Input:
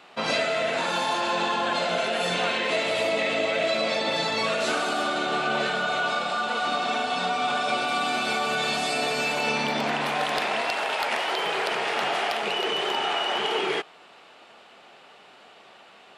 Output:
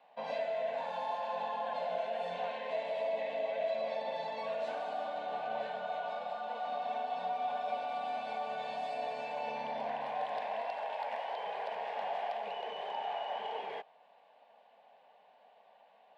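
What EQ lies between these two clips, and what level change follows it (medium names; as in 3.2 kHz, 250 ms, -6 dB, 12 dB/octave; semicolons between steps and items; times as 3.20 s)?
three-band isolator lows -14 dB, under 530 Hz, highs -21 dB, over 3.5 kHz; resonant high shelf 1.8 kHz -8 dB, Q 1.5; static phaser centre 350 Hz, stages 6; -5.5 dB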